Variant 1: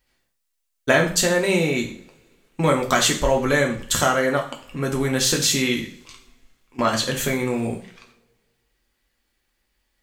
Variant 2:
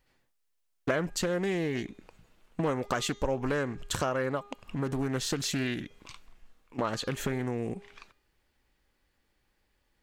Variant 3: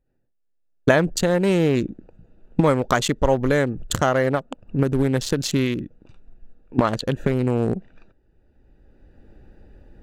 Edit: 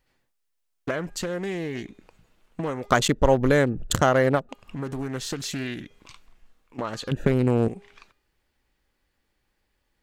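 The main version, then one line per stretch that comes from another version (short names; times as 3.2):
2
2.91–4.49 from 3
7.11–7.68 from 3
not used: 1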